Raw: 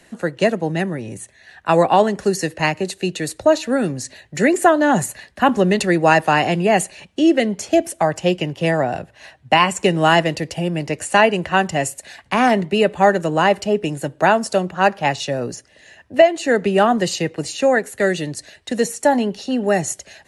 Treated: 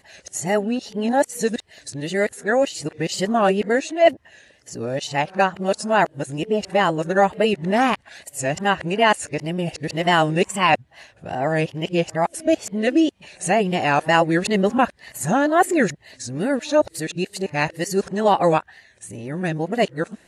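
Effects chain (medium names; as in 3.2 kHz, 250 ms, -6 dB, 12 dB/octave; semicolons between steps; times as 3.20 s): reverse the whole clip; wow and flutter 84 cents; trim -3 dB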